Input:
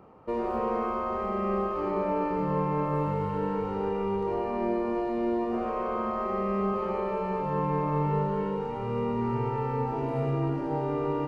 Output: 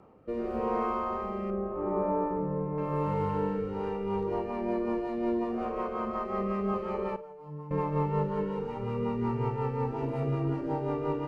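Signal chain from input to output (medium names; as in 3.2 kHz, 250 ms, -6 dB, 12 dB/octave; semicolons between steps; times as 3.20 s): 1.50–2.78 s: low-pass 1.2 kHz 12 dB/octave; 7.16–7.71 s: feedback comb 150 Hz, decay 0.68 s, harmonics all, mix 100%; rotary cabinet horn 0.85 Hz, later 5.5 Hz, at 3.43 s; flutter echo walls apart 8.9 m, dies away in 0.21 s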